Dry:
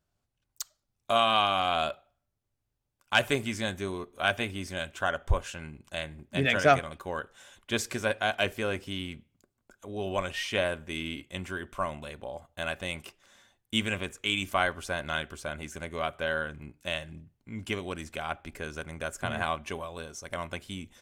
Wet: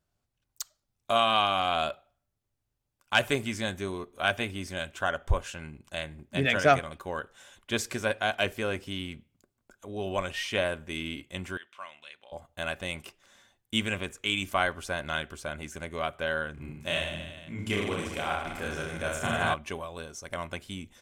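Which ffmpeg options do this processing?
-filter_complex "[0:a]asettb=1/sr,asplit=3[s0][s1][s2];[s0]atrim=end=11.574[s3];[s1]atrim=start=11.57:end=12.32,asetpts=PTS-STARTPTS,afade=t=in:d=0.004:c=qsin,afade=t=out:st=0.746:d=0.004:c=qsin,bandpass=f=2900:t=q:w=1.4[s4];[s2]atrim=start=12.316[s5];[s3][s4]acrossfade=d=0.004:c1=hsin:c2=qsin[s6];[s6][s5]acrossfade=d=0.004:c1=qsin:c2=hsin,asettb=1/sr,asplit=3[s7][s8][s9];[s7]atrim=end=16.544[s10];[s8]atrim=start=16.54:end=19.54,asetpts=PTS-STARTPTS,afade=t=in:d=0.004:c=qsin,afade=t=out:st=2.996:d=0.004:c=qsin,aecho=1:1:30|64.5|104.2|149.8|202.3|262.6|332|411.8|503.6:0.794|0.631|0.501|0.398|0.316|0.251|0.2|0.158|0.126,atrim=end_sample=132300[s11];[s9]atrim=start=19.536[s12];[s10][s11]acrossfade=d=0.004:c1=hsin:c2=qsin[s13];[s13][s12]acrossfade=d=0.004:c1=qsin:c2=hsin"

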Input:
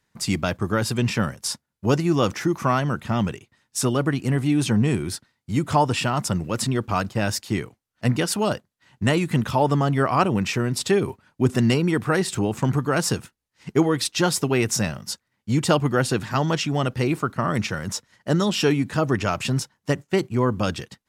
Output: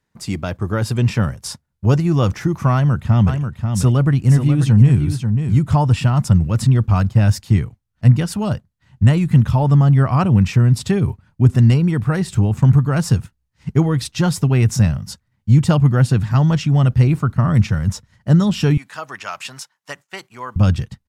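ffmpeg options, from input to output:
-filter_complex "[0:a]asplit=3[s0][s1][s2];[s0]afade=t=out:st=3.26:d=0.02[s3];[s1]aecho=1:1:538:0.447,afade=t=in:st=3.26:d=0.02,afade=t=out:st=5.58:d=0.02[s4];[s2]afade=t=in:st=5.58:d=0.02[s5];[s3][s4][s5]amix=inputs=3:normalize=0,asettb=1/sr,asplit=3[s6][s7][s8];[s6]atrim=end=18.774[s9];[s7]atrim=start=18.77:end=20.56,asetpts=PTS-STARTPTS,afade=t=in:d=0.004:c=qsin,afade=t=out:st=1.786:d=0.004:c=qsin,highpass=940[s10];[s8]atrim=start=20.556[s11];[s9][s10]acrossfade=d=0.004:c1=hsin:c2=qsin[s12];[s12][s11]acrossfade=d=0.004:c1=qsin:c2=hsin,asubboost=boost=8.5:cutoff=120,dynaudnorm=f=470:g=3:m=1.58,tiltshelf=f=1200:g=3,volume=0.75"

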